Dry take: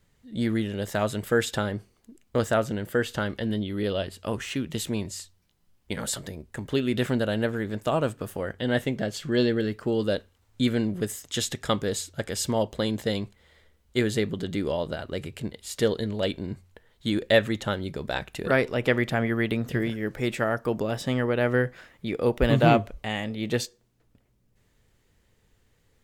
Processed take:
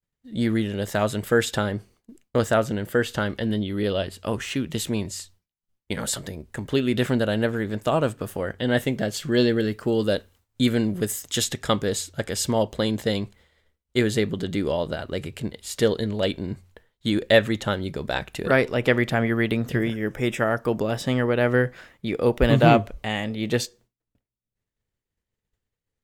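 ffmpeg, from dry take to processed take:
-filter_complex "[0:a]asettb=1/sr,asplit=3[a][b][c];[a]atrim=end=8.774[d];[b]atrim=start=8.77:end=11.44,asetpts=PTS-STARTPTS,afade=t=in:d=0.004:c=qsin,afade=t=out:st=2.666:d=0.004:c=qsin,highshelf=f=8.7k:g=7.5[e];[c]atrim=start=11.436[f];[d][e]acrossfade=d=0.004:c1=hsin:c2=qsin[g];[g][f]acrossfade=d=0.004:c1=qsin:c2=hsin,asettb=1/sr,asplit=3[h][i][j];[h]atrim=end=19.764[k];[i]atrim=start=19.76:end=20.48,asetpts=PTS-STARTPTS,afade=t=in:d=0.004:c=qsin,afade=t=out:st=0.716:d=0.004:c=qsin,asuperstop=centerf=4300:order=4:qfactor=4[l];[j]atrim=start=20.476[m];[k][l]acrossfade=d=0.004:c1=hsin:c2=qsin[n];[n][m]acrossfade=d=0.004:c1=qsin:c2=hsin,agate=range=-33dB:threshold=-50dB:ratio=3:detection=peak,volume=3dB"

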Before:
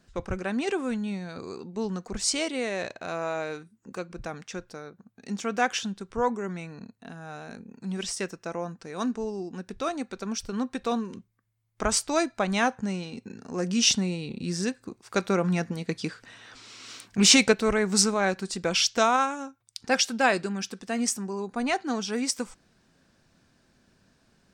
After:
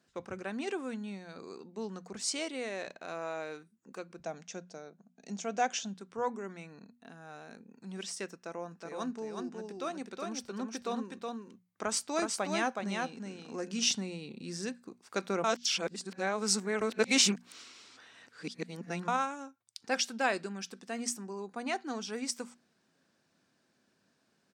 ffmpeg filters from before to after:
-filter_complex "[0:a]asettb=1/sr,asplit=3[a][b][c];[a]atrim=end=4.214[d];[b]atrim=start=4.21:end=5.94,asetpts=PTS-STARTPTS,afade=t=in:d=0.004:c=qsin,afade=t=out:st=1.726:d=0.004:c=qsin,highpass=150,equalizer=f=170:t=q:w=4:g=9,equalizer=f=660:t=q:w=4:g=9,equalizer=f=1.2k:t=q:w=4:g=-5,equalizer=f=1.8k:t=q:w=4:g=-3,equalizer=f=6.5k:t=q:w=4:g=8,lowpass=f=8.4k:w=0.5412,lowpass=f=8.4k:w=1.3066[e];[c]atrim=start=5.936[f];[d][e]acrossfade=d=0.004:c1=hsin:c2=qsin[g];[g][f]acrossfade=d=0.004:c1=qsin:c2=hsin,asplit=3[h][i][j];[h]afade=t=out:st=8.71:d=0.02[k];[i]aecho=1:1:369:0.668,afade=t=in:st=8.71:d=0.02,afade=t=out:st=13.85:d=0.02[l];[j]afade=t=in:st=13.85:d=0.02[m];[k][l][m]amix=inputs=3:normalize=0,asplit=3[n][o][p];[n]atrim=end=15.442[q];[o]atrim=start=15.438:end=19.082,asetpts=PTS-STARTPTS,areverse[r];[p]atrim=start=19.078[s];[q][r]acrossfade=d=0.004:c1=hsin:c2=hsin[t];[t][s]acrossfade=d=0.004:c1=hsin:c2=hsin,highpass=180,bandreject=f=60:t=h:w=6,bandreject=f=120:t=h:w=6,bandreject=f=180:t=h:w=6,bandreject=f=240:t=h:w=6,volume=-7.5dB"

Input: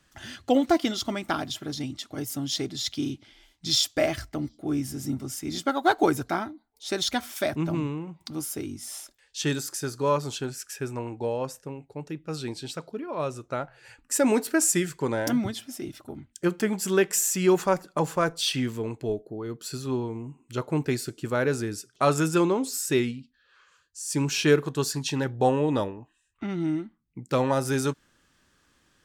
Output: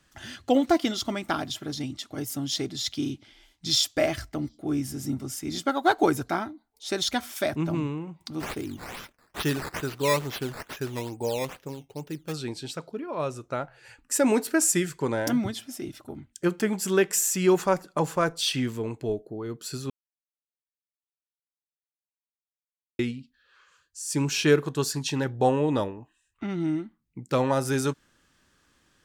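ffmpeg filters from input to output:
-filter_complex "[0:a]asplit=3[a][b][c];[a]afade=t=out:st=8.39:d=0.02[d];[b]acrusher=samples=10:mix=1:aa=0.000001:lfo=1:lforange=10:lforate=2.3,afade=t=in:st=8.39:d=0.02,afade=t=out:st=12.32:d=0.02[e];[c]afade=t=in:st=12.32:d=0.02[f];[d][e][f]amix=inputs=3:normalize=0,asplit=3[g][h][i];[g]atrim=end=19.9,asetpts=PTS-STARTPTS,afade=t=out:st=19.896:d=0.004:c=hsin[j];[h]atrim=start=19.9:end=22.99,asetpts=PTS-STARTPTS,volume=0[k];[i]atrim=start=22.99,asetpts=PTS-STARTPTS,afade=t=in:d=0.004:c=hsin[l];[j][k][l]concat=n=3:v=0:a=1"

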